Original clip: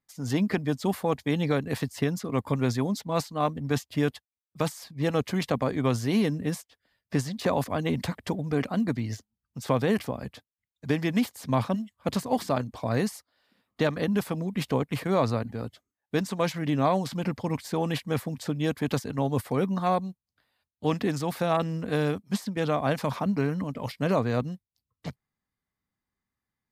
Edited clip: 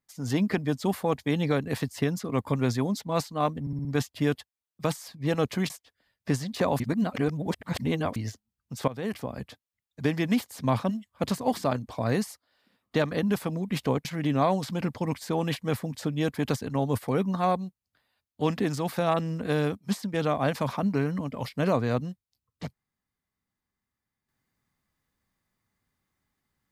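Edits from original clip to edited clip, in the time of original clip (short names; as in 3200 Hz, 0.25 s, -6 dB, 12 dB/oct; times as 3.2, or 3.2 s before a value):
3.61 stutter 0.06 s, 5 plays
5.46–6.55 cut
7.65–9.01 reverse
9.73–10.25 fade in, from -17 dB
14.9–16.48 cut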